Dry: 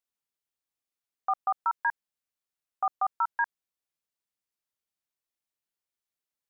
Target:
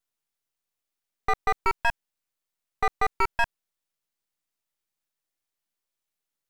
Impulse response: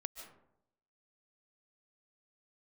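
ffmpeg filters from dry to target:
-af "aeval=exprs='max(val(0),0)':channel_layout=same,volume=7.5dB"

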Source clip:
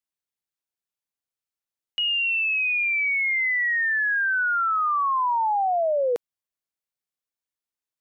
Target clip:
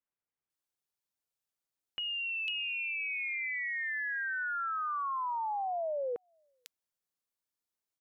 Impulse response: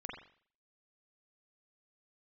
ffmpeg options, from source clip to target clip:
-filter_complex "[0:a]acrossover=split=2400[link_01][link_02];[link_02]adelay=500[link_03];[link_01][link_03]amix=inputs=2:normalize=0,acompressor=threshold=-34dB:ratio=6"

